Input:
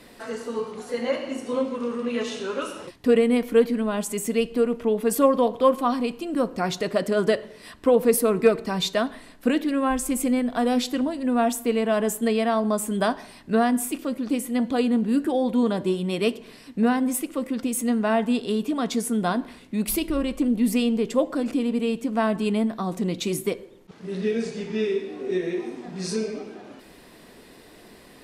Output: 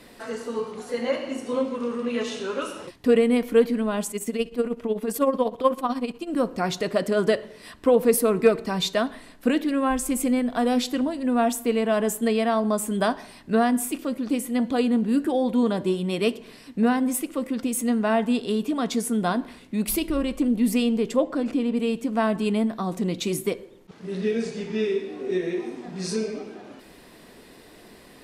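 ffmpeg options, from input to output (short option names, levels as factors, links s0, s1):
-filter_complex "[0:a]asettb=1/sr,asplit=3[s0][s1][s2];[s0]atrim=end=4.104[s3];[s1]atrim=start=4.1:end=6.28,asetpts=PTS-STARTPTS,afade=t=in:d=0.004:c=qsin,afade=t=out:st=2.176:d=0.004:c=qsin,tremolo=f=16:d=0.71[s4];[s2]atrim=start=6.276[s5];[s3][s4]acrossfade=d=0.004:c1=hsin:c2=qsin[s6];[s6][s5]acrossfade=d=0.004:c1=qsin:c2=hsin,asettb=1/sr,asplit=3[s7][s8][s9];[s7]atrim=end=21.164[s10];[s8]atrim=start=21.16:end=21.77,asetpts=PTS-STARTPTS,afade=t=in:d=0.004:c=qsin,afade=t=out:st=0.606:d=0.004:c=qsin,highshelf=f=7000:g=-10.5[s11];[s9]atrim=start=21.766[s12];[s10][s11]acrossfade=d=0.004:c1=hsin:c2=qsin[s13];[s13][s12]acrossfade=d=0.004:c1=qsin:c2=hsin"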